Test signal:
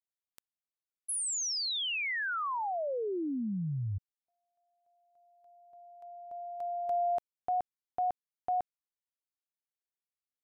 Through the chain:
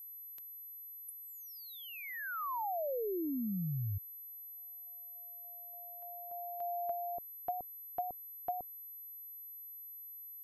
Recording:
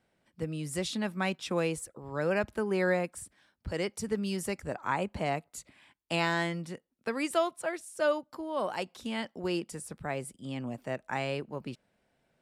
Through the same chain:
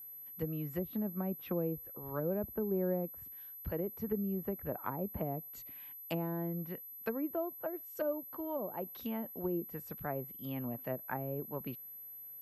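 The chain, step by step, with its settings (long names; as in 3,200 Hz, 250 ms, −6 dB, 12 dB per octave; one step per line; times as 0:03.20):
treble cut that deepens with the level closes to 470 Hz, closed at −28.5 dBFS
steady tone 12,000 Hz −44 dBFS
level −2.5 dB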